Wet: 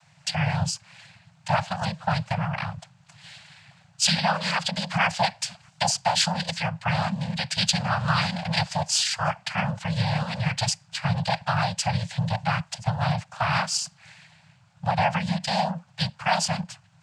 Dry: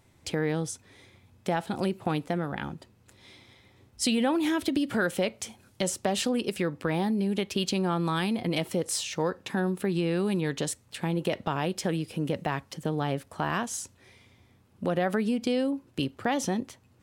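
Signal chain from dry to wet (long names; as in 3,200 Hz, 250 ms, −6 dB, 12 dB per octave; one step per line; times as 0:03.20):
cochlear-implant simulation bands 8
dynamic equaliser 4,800 Hz, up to +7 dB, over −56 dBFS, Q 6.8
Chebyshev band-stop filter 170–670 Hz, order 3
level +8 dB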